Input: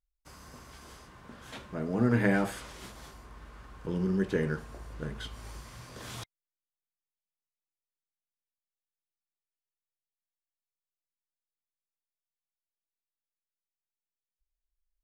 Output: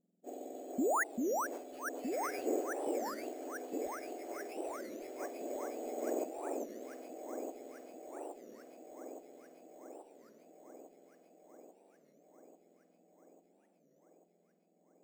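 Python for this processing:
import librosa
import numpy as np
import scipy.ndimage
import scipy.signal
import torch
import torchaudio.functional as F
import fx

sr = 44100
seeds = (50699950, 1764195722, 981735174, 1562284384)

y = fx.octave_mirror(x, sr, pivot_hz=1900.0)
y = fx.env_lowpass_down(y, sr, base_hz=2600.0, full_db=-38.0)
y = fx.curve_eq(y, sr, hz=(320.0, 710.0, 1000.0, 3100.0, 4700.0, 8000.0), db=(0, 3, -18, -17, -24, -18))
y = fx.spec_paint(y, sr, seeds[0], shape='rise', start_s=0.78, length_s=0.27, low_hz=220.0, high_hz=1800.0, level_db=-37.0)
y = fx.echo_alternate(y, sr, ms=421, hz=1400.0, feedback_pct=84, wet_db=-2.5)
y = np.repeat(y[::6], 6)[:len(y)]
y = fx.record_warp(y, sr, rpm=33.33, depth_cents=250.0)
y = y * librosa.db_to_amplitude(6.0)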